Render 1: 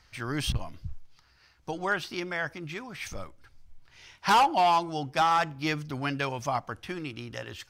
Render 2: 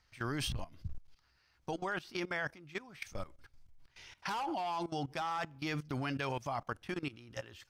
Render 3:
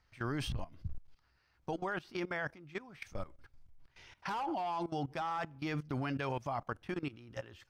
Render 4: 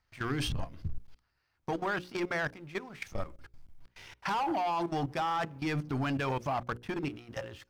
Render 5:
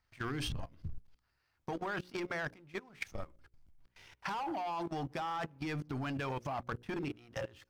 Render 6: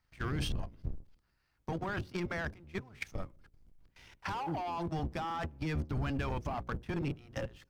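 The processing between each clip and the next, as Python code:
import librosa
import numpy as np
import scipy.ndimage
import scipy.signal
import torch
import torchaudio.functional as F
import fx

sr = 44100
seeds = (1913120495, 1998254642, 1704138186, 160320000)

y1 = fx.level_steps(x, sr, step_db=18)
y2 = fx.high_shelf(y1, sr, hz=2700.0, db=-9.0)
y2 = y2 * 10.0 ** (1.0 / 20.0)
y3 = fx.leveller(y2, sr, passes=2)
y3 = fx.hum_notches(y3, sr, base_hz=60, count=9)
y4 = fx.level_steps(y3, sr, step_db=21)
y4 = y4 * 10.0 ** (5.0 / 20.0)
y5 = fx.octave_divider(y4, sr, octaves=1, level_db=4.0)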